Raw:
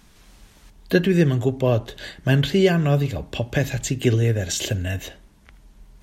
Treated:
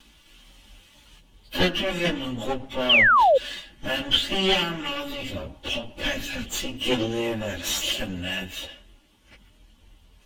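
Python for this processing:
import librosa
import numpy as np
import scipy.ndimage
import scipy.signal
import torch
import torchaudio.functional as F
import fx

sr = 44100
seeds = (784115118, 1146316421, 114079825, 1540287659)

y = fx.lower_of_two(x, sr, delay_ms=3.5)
y = fx.peak_eq(y, sr, hz=3000.0, db=12.5, octaves=0.55)
y = fx.stretch_vocoder_free(y, sr, factor=1.7)
y = fx.spec_paint(y, sr, seeds[0], shape='fall', start_s=2.89, length_s=0.49, low_hz=490.0, high_hz=3300.0, level_db=-16.0)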